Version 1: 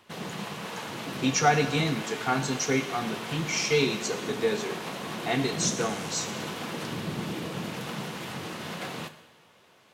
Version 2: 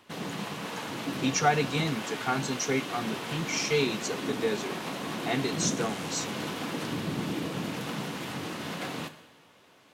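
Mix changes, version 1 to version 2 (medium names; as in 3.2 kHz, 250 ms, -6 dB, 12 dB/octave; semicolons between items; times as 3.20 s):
speech: send -11.5 dB; background: add peaking EQ 280 Hz +9 dB 0.2 oct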